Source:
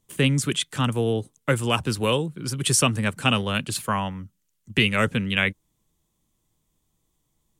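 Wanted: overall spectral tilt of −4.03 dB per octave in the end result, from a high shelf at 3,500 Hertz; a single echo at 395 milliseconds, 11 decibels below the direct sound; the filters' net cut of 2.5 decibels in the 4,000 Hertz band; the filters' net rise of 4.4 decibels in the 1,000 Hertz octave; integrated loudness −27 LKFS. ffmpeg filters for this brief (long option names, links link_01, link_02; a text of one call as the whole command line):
ffmpeg -i in.wav -af "equalizer=frequency=1000:width_type=o:gain=5.5,highshelf=frequency=3500:gain=3.5,equalizer=frequency=4000:width_type=o:gain=-7,aecho=1:1:395:0.282,volume=-4.5dB" out.wav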